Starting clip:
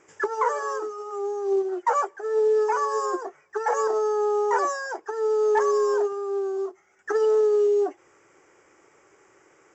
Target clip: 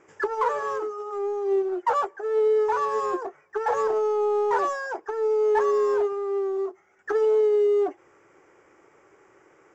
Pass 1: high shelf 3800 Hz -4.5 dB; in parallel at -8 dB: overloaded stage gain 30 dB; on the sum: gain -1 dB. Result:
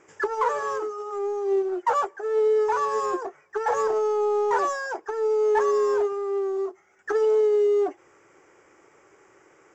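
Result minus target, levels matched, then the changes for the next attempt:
8000 Hz band +5.5 dB
change: high shelf 3800 Hz -12 dB

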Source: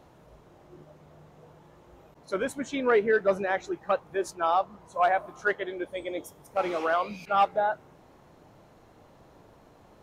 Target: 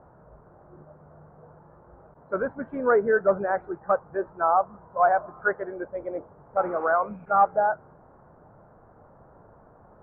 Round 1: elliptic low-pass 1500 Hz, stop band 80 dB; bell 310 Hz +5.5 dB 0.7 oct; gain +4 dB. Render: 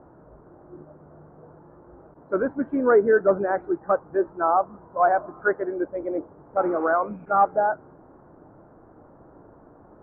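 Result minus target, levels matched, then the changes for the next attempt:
250 Hz band +5.5 dB
change: bell 310 Hz -6 dB 0.7 oct

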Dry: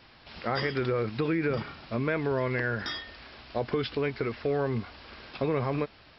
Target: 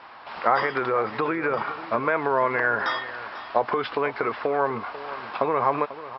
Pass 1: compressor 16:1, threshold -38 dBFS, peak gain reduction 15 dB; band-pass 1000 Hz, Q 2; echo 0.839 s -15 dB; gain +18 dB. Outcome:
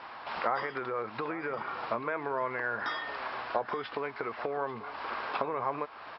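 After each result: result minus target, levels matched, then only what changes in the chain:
echo 0.346 s late; compressor: peak gain reduction +10.5 dB
change: echo 0.493 s -15 dB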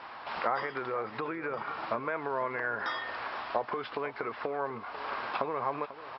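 compressor: peak gain reduction +10.5 dB
change: compressor 16:1, threshold -27 dBFS, peak gain reduction 5 dB

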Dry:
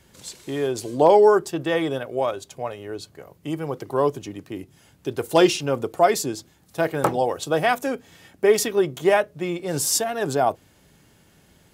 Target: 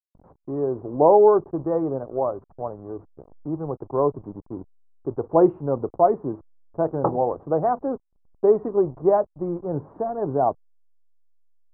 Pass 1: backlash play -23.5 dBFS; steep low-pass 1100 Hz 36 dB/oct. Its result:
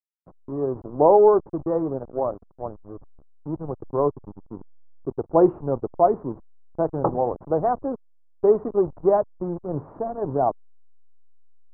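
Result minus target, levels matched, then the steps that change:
backlash: distortion +8 dB
change: backlash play -32.5 dBFS

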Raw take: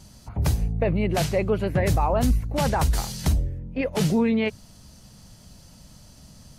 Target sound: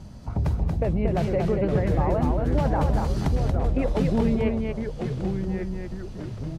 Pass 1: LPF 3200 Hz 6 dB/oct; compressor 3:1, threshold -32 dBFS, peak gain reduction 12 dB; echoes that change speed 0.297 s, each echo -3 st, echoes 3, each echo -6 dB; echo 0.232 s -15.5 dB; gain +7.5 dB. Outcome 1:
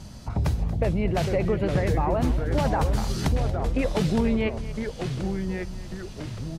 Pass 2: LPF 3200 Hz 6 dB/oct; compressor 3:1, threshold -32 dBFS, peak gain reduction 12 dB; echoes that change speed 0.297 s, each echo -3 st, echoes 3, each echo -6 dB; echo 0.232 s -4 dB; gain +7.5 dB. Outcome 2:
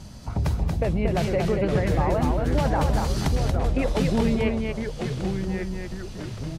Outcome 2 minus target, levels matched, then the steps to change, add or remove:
4000 Hz band +7.5 dB
change: LPF 980 Hz 6 dB/oct

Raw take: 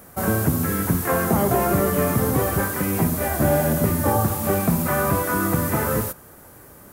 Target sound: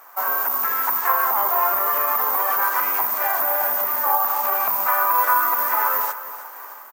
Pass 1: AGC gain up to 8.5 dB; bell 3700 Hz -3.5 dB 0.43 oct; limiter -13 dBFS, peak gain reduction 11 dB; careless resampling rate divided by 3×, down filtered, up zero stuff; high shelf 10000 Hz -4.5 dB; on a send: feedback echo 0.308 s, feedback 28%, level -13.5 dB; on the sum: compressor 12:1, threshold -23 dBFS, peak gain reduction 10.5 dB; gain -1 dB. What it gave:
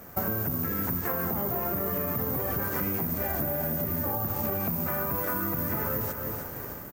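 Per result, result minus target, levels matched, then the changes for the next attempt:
compressor: peak gain reduction +10.5 dB; 1000 Hz band -7.0 dB
remove: compressor 12:1, threshold -23 dBFS, peak gain reduction 10.5 dB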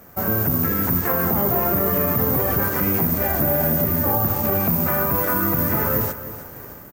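1000 Hz band -7.5 dB
add after careless resampling: resonant high-pass 980 Hz, resonance Q 3.5

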